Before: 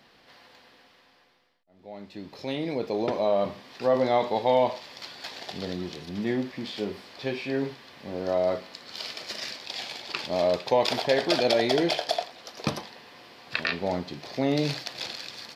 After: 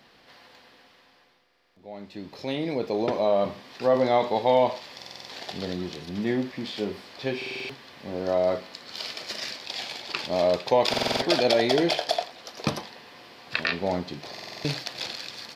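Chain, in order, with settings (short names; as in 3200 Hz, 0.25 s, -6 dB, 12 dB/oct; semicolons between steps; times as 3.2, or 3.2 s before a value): stuck buffer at 1.44/4.97/7.37/10.89/14.32, samples 2048, times 6; gain +1.5 dB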